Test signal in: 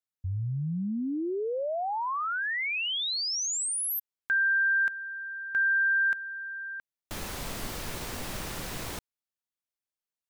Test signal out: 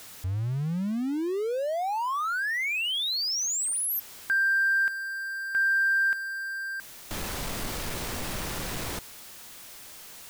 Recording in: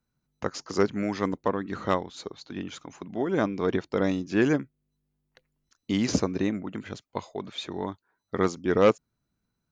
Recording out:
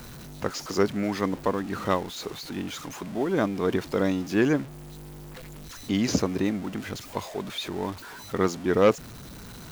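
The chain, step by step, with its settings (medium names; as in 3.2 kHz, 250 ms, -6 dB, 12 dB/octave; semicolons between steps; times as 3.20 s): jump at every zero crossing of -36 dBFS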